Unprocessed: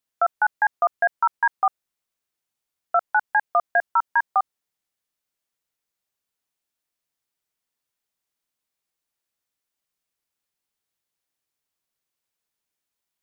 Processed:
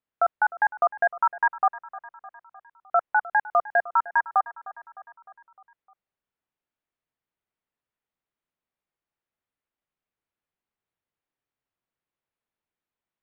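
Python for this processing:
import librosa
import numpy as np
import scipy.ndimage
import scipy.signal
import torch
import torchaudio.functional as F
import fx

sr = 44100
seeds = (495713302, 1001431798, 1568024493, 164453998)

y = fx.air_absorb(x, sr, metres=450.0)
y = fx.echo_feedback(y, sr, ms=305, feedback_pct=57, wet_db=-18.0)
y = y * 10.0 ** (1.0 / 20.0)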